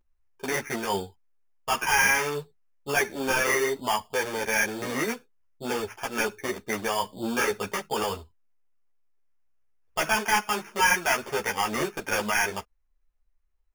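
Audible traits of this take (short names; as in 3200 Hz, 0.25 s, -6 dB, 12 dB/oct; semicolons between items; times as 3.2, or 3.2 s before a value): aliases and images of a low sample rate 4000 Hz, jitter 0%; a shimmering, thickened sound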